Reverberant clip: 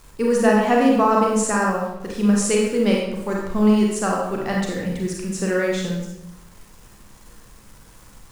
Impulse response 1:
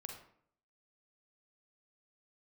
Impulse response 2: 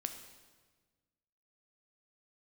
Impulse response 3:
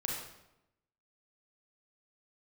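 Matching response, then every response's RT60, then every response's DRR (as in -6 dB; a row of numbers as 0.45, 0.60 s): 3; 0.65, 1.4, 0.90 s; 2.0, 6.0, -2.5 dB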